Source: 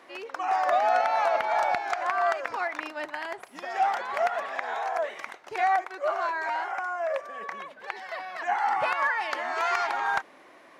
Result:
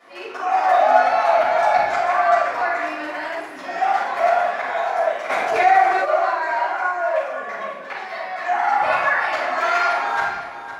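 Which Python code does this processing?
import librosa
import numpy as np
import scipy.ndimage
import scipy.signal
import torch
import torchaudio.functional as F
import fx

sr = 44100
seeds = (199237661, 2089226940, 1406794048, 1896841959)

y = x + 10.0 ** (-12.0 / 20.0) * np.pad(x, (int(510 * sr / 1000.0), 0))[:len(x)]
y = fx.room_shoebox(y, sr, seeds[0], volume_m3=360.0, walls='mixed', distance_m=6.3)
y = fx.env_flatten(y, sr, amount_pct=50, at=(5.29, 6.04), fade=0.02)
y = y * librosa.db_to_amplitude(-7.5)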